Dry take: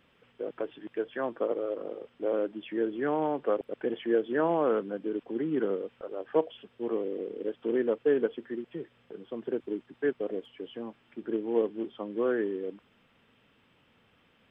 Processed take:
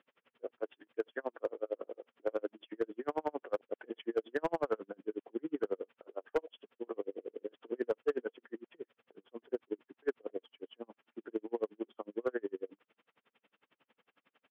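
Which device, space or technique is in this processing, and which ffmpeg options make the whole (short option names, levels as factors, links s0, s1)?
helicopter radio: -af "highpass=340,lowpass=2900,aeval=exprs='val(0)*pow(10,-40*(0.5-0.5*cos(2*PI*11*n/s))/20)':c=same,asoftclip=type=hard:threshold=0.0596,volume=1.12"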